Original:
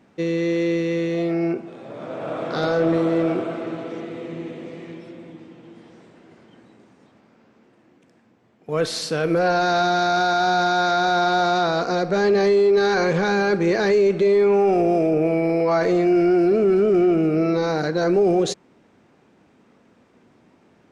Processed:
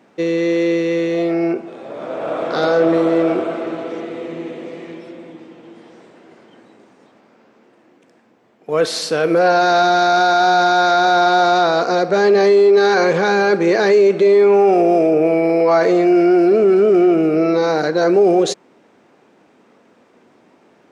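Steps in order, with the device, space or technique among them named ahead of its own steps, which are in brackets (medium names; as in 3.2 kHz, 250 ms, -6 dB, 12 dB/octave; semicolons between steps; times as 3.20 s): filter by subtraction (in parallel: low-pass 480 Hz 12 dB/octave + polarity flip); on the sum: trim +4.5 dB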